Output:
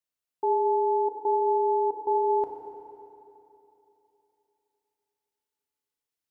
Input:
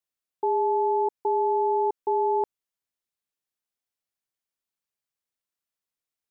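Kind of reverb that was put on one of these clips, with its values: FDN reverb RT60 3.1 s, high-frequency decay 0.95×, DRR 1.5 dB; gain -2.5 dB

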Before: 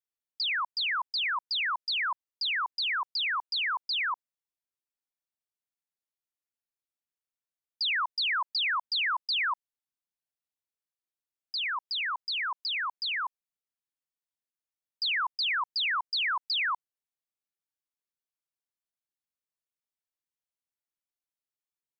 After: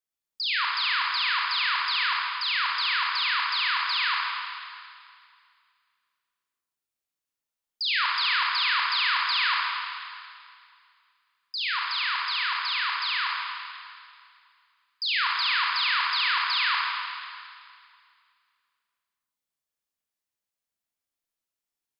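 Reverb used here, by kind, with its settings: Schroeder reverb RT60 2.2 s, combs from 27 ms, DRR -3 dB

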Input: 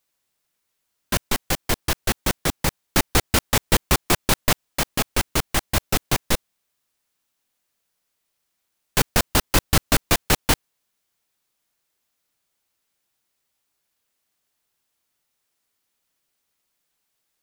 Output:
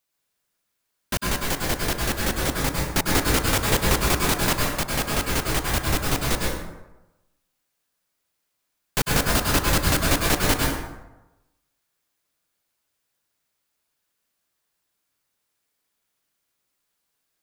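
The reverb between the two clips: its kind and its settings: plate-style reverb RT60 1 s, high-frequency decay 0.55×, pre-delay 90 ms, DRR -2 dB; gain -4 dB

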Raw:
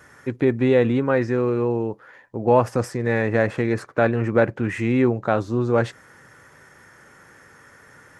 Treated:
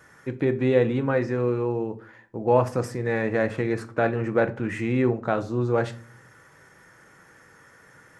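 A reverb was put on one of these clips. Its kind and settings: shoebox room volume 360 m³, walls furnished, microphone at 0.64 m; gain -4 dB

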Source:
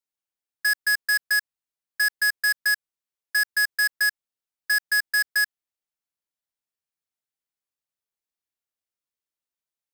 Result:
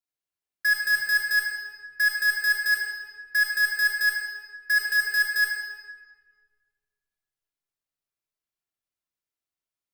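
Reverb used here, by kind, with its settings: shoebox room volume 2400 m³, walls mixed, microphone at 3.1 m; gain -5.5 dB

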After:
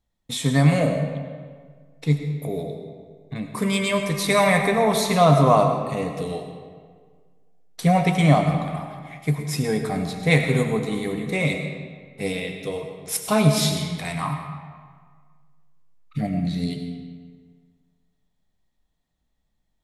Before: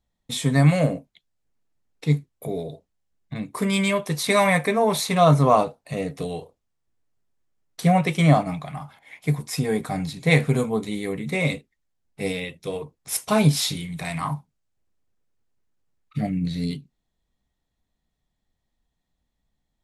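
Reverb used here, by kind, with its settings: digital reverb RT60 1.7 s, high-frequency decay 0.7×, pre-delay 50 ms, DRR 5 dB

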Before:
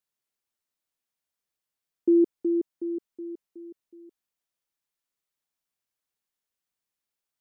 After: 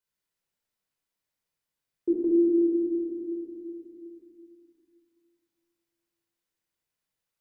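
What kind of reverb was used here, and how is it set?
shoebox room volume 2800 m³, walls mixed, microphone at 4.9 m; gain -5 dB

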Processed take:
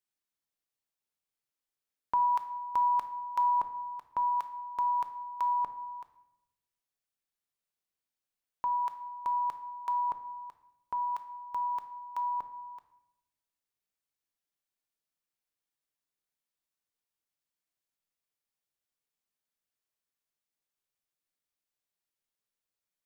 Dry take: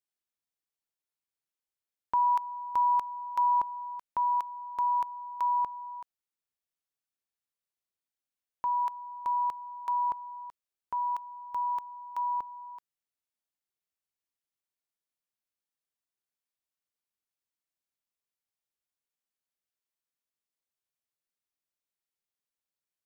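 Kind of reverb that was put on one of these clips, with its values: shoebox room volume 280 m³, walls mixed, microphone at 0.4 m

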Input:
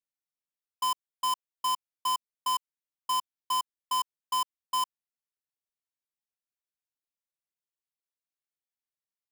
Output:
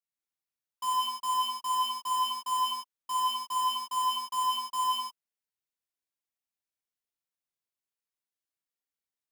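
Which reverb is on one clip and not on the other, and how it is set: non-linear reverb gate 0.28 s flat, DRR -6.5 dB; gain -8 dB

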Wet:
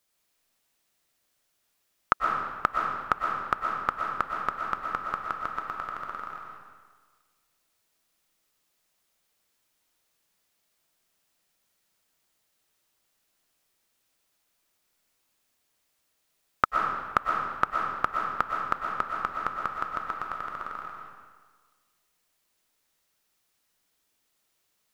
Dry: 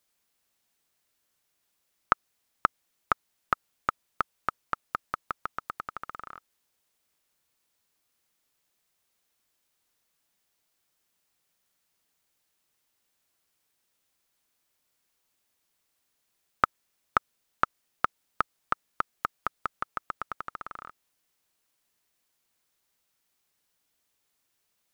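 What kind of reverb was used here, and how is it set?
digital reverb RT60 1.5 s, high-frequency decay 0.85×, pre-delay 80 ms, DRR 0 dB

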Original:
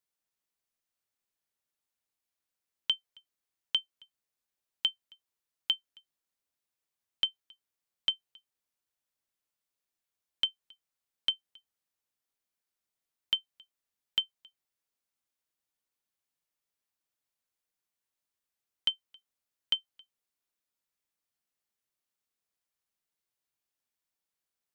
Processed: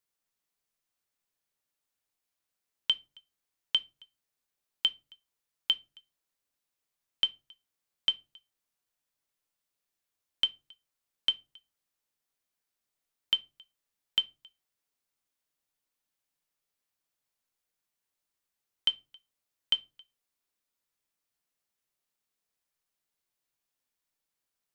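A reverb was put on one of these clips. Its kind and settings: shoebox room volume 120 m³, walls furnished, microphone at 0.34 m; gain +2 dB

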